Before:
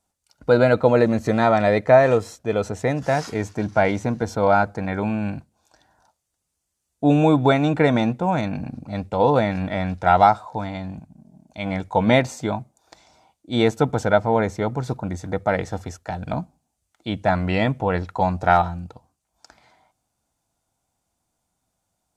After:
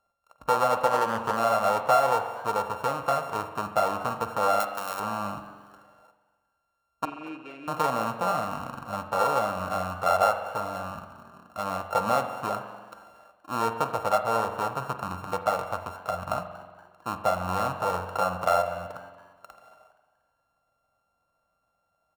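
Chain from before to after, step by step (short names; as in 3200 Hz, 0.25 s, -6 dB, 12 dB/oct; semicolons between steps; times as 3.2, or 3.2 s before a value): sample sorter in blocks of 32 samples; 4.6–5 tilt +3.5 dB/oct; compressor 2:1, threshold -32 dBFS, peak gain reduction 13 dB; 7.05–7.68 double band-pass 900 Hz, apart 2.9 oct; band shelf 820 Hz +13.5 dB; frequency-shifting echo 0.236 s, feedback 43%, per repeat +98 Hz, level -21 dB; spring tank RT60 1.4 s, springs 44 ms, chirp 40 ms, DRR 8 dB; 0.86–1.37 Doppler distortion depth 0.16 ms; gain -7 dB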